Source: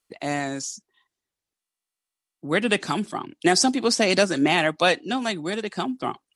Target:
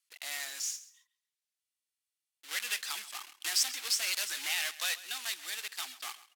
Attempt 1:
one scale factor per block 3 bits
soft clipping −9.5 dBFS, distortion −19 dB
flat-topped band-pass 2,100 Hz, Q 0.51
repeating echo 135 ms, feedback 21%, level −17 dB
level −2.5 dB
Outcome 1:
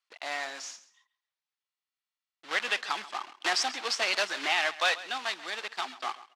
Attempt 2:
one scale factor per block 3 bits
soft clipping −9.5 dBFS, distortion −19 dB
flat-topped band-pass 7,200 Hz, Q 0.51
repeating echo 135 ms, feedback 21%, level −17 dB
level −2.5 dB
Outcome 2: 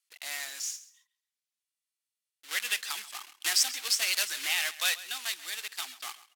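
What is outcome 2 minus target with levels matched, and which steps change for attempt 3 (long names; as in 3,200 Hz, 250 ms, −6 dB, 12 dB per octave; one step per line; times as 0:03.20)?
soft clipping: distortion −10 dB
change: soft clipping −19 dBFS, distortion −9 dB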